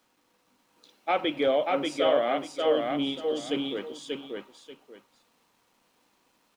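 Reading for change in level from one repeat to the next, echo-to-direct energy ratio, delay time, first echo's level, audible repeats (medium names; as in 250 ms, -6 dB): -12.5 dB, -3.0 dB, 586 ms, -3.0 dB, 2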